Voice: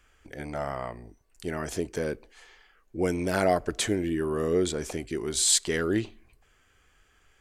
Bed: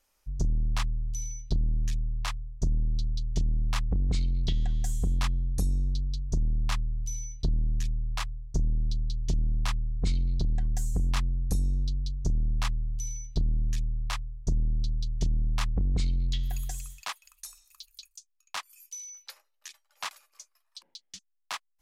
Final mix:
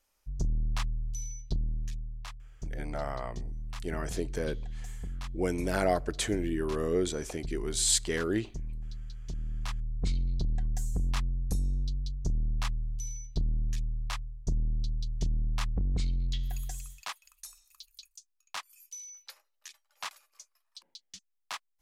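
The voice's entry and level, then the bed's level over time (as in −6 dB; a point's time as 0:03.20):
2.40 s, −3.5 dB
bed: 0:01.43 −3 dB
0:02.34 −11.5 dB
0:09.21 −11.5 dB
0:09.98 −3 dB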